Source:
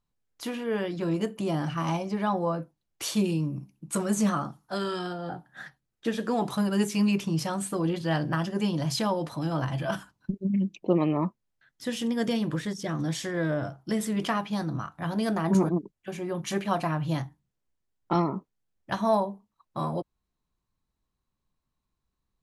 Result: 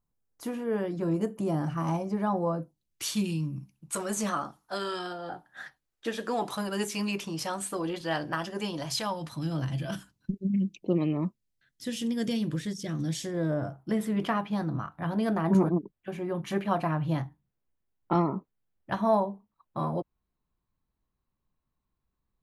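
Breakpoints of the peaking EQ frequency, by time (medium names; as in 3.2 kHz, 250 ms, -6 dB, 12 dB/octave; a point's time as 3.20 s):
peaking EQ -11.5 dB 1.8 oct
2.51 s 3.3 kHz
3.07 s 560 Hz
3.61 s 560 Hz
4.07 s 140 Hz
8.79 s 140 Hz
9.52 s 960 Hz
13.08 s 960 Hz
13.97 s 6.8 kHz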